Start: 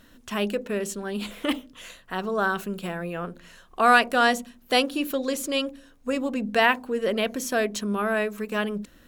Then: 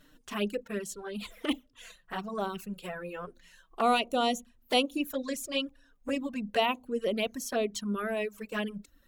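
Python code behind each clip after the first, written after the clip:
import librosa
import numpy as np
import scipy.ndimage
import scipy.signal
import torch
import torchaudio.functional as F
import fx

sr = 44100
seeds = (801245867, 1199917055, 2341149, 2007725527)

y = fx.dereverb_blind(x, sr, rt60_s=0.83)
y = fx.env_flanger(y, sr, rest_ms=7.2, full_db=-21.5)
y = y * librosa.db_to_amplitude(-2.5)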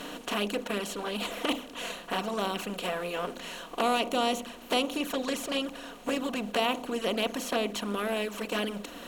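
y = fx.bin_compress(x, sr, power=0.4)
y = y * librosa.db_to_amplitude(-4.5)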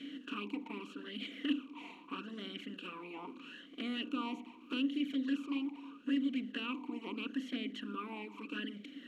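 y = fx.vowel_sweep(x, sr, vowels='i-u', hz=0.79)
y = y * librosa.db_to_amplitude(2.5)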